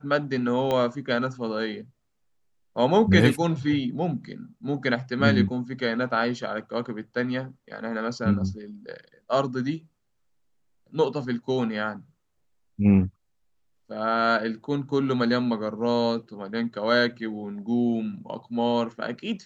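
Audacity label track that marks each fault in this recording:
0.710000	0.710000	pop -14 dBFS

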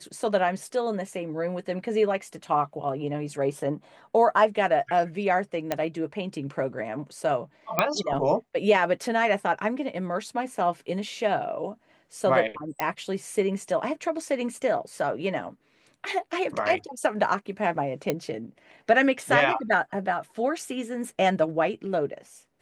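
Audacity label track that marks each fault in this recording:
5.720000	5.720000	pop -11 dBFS
7.790000	7.790000	pop -6 dBFS
12.800000	12.800000	pop -11 dBFS
18.100000	18.100000	pop -11 dBFS

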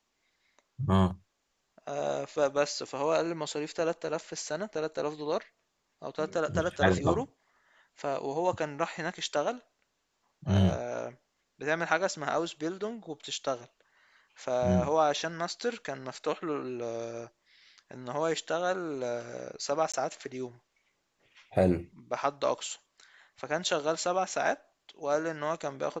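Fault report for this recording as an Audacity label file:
19.920000	19.940000	gap 16 ms

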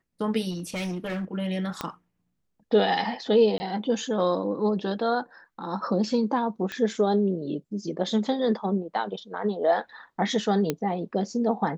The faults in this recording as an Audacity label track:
0.500000	1.250000	clipped -27 dBFS
1.810000	1.810000	pop -14 dBFS
3.580000	3.600000	gap 20 ms
6.720000	6.720000	pop -18 dBFS
10.700000	10.700000	pop -11 dBFS

